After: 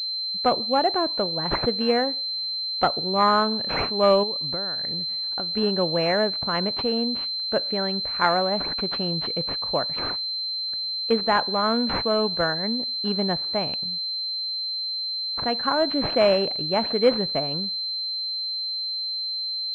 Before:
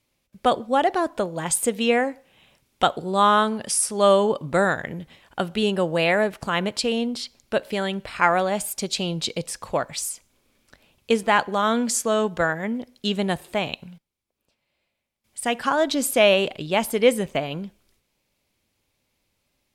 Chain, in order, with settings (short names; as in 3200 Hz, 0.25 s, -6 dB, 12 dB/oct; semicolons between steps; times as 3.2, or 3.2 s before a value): 4.23–5.57 compressor 20:1, threshold -29 dBFS, peak gain reduction 14.5 dB; pulse-width modulation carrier 4100 Hz; gain -1.5 dB